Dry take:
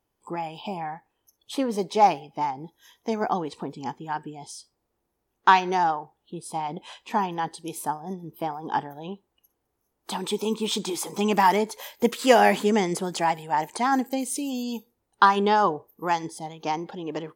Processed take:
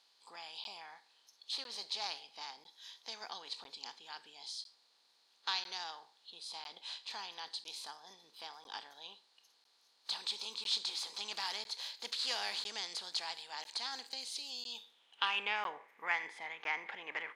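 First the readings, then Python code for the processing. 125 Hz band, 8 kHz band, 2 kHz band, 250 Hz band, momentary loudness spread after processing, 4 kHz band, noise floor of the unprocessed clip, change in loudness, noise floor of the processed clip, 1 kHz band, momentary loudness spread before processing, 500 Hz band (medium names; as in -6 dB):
under -35 dB, -12.0 dB, -10.5 dB, -35.5 dB, 16 LU, -2.0 dB, -78 dBFS, -14.5 dB, -71 dBFS, -22.0 dB, 17 LU, -28.0 dB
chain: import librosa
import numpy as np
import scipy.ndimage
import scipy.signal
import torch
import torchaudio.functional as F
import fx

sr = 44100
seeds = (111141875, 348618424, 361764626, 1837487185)

y = fx.bin_compress(x, sr, power=0.6)
y = fx.filter_sweep_bandpass(y, sr, from_hz=4300.0, to_hz=2100.0, start_s=14.6, end_s=15.74, q=6.7)
y = fx.buffer_crackle(y, sr, first_s=0.64, period_s=1.0, block=512, kind='zero')
y = y * librosa.db_to_amplitude(1.5)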